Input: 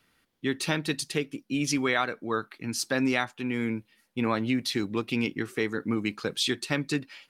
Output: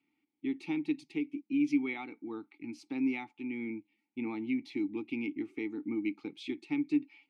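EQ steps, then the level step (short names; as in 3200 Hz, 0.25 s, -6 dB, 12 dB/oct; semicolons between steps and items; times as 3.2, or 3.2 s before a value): vowel filter u; bell 1000 Hz -13.5 dB 0.24 oct; +3.0 dB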